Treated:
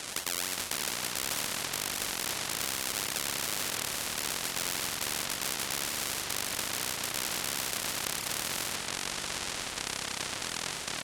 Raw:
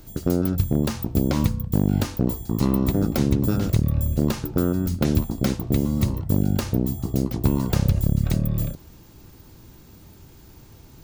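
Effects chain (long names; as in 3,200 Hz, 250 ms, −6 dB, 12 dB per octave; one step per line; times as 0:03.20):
three-way crossover with the lows and the highs turned down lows −15 dB, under 280 Hz, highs −12 dB, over 5,300 Hz
sample-and-hold swept by an LFO 35×, swing 100% 3.5 Hz
brickwall limiter −25.5 dBFS, peak gain reduction 11.5 dB
meter weighting curve ITU-R 468
single-tap delay 379 ms −23 dB
delay with pitch and tempo change per echo 333 ms, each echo −7 semitones, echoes 2
every bin compressed towards the loudest bin 4 to 1
level +3 dB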